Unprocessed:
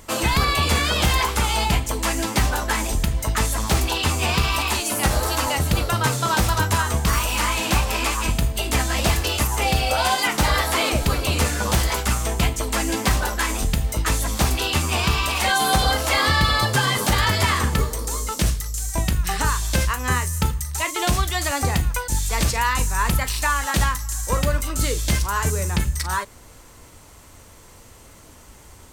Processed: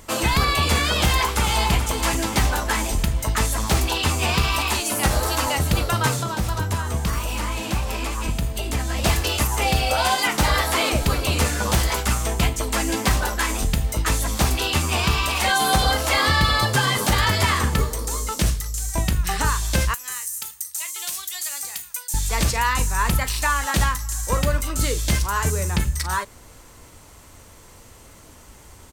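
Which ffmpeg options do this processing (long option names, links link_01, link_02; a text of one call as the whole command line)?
ffmpeg -i in.wav -filter_complex "[0:a]asplit=2[link_01][link_02];[link_02]afade=type=in:start_time=1.03:duration=0.01,afade=type=out:start_time=1.73:duration=0.01,aecho=0:1:430|860|1290|1720|2150|2580:0.354813|0.195147|0.107331|0.0590321|0.0324676|0.0178572[link_03];[link_01][link_03]amix=inputs=2:normalize=0,asettb=1/sr,asplit=3[link_04][link_05][link_06];[link_04]atrim=end=6.194[link_07];[link_05]atrim=start=6.19:end=9.04,asetpts=PTS-STARTPTS,afade=type=in:duration=0.004:curve=qsin,afade=type=out:start_time=2.846:duration=0.004:curve=qsin,acrossover=split=200|670[link_08][link_09][link_10];[link_08]acompressor=threshold=-21dB:ratio=4[link_11];[link_09]acompressor=threshold=-32dB:ratio=4[link_12];[link_10]acompressor=threshold=-30dB:ratio=4[link_13];[link_11][link_12][link_13]amix=inputs=3:normalize=0[link_14];[link_06]atrim=start=9.036[link_15];[link_07][link_14]acrossfade=duration=0.004:curve1=hsin:curve2=qsin[link_16];[link_16][link_15]acrossfade=duration=0.004:curve1=qsin:curve2=hsin,asettb=1/sr,asplit=3[link_17][link_18][link_19];[link_17]atrim=end=19.944[link_20];[link_18]atrim=start=19.94:end=22.14,asetpts=PTS-STARTPTS,afade=type=in:duration=0.004:curve=qsin,afade=type=out:start_time=2.196:duration=0.004:curve=qsin,aderivative[link_21];[link_19]atrim=start=22.136[link_22];[link_20][link_21]acrossfade=duration=0.004:curve1=hsin:curve2=qsin[link_23];[link_23][link_22]acrossfade=duration=0.004:curve1=qsin:curve2=hsin" out.wav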